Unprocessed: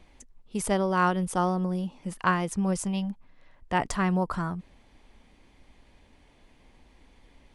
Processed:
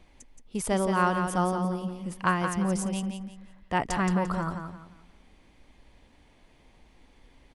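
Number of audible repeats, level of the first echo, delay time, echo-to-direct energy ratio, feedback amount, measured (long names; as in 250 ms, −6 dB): 3, −6.5 dB, 173 ms, −6.0 dB, 31%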